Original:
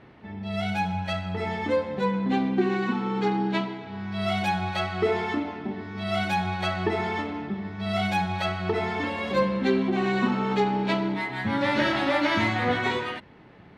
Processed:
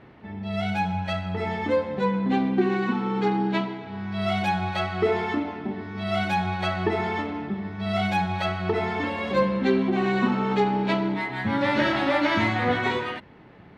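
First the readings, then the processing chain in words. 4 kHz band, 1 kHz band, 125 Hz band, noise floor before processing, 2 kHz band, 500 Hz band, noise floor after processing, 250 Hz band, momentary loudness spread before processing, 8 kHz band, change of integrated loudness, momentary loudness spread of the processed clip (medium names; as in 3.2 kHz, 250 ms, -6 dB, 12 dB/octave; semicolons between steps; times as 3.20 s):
-0.5 dB, +1.5 dB, +1.5 dB, -50 dBFS, +0.5 dB, +1.5 dB, -49 dBFS, +1.5 dB, 9 LU, no reading, +1.0 dB, 9 LU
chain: treble shelf 4.4 kHz -5.5 dB; trim +1.5 dB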